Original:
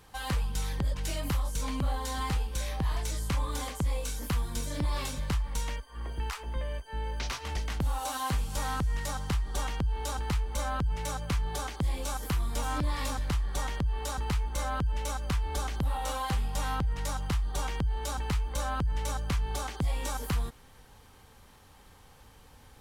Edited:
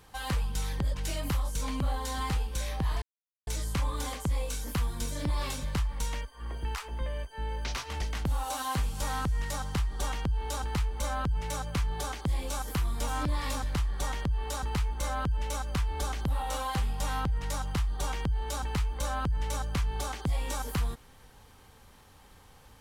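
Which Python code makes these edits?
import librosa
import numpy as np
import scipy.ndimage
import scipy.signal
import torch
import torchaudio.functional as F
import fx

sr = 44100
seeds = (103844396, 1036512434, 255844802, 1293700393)

y = fx.edit(x, sr, fx.insert_silence(at_s=3.02, length_s=0.45), tone=tone)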